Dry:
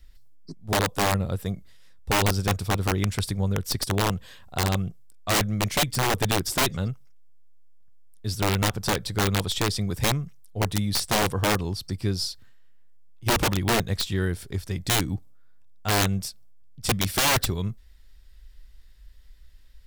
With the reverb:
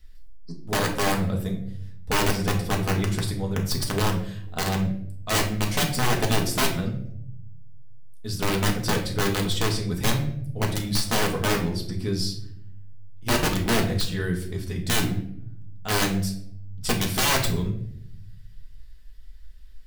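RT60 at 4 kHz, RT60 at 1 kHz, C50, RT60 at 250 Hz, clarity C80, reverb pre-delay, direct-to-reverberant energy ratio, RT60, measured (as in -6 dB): 0.45 s, 0.55 s, 8.5 dB, 1.2 s, 12.0 dB, 4 ms, 0.0 dB, 0.70 s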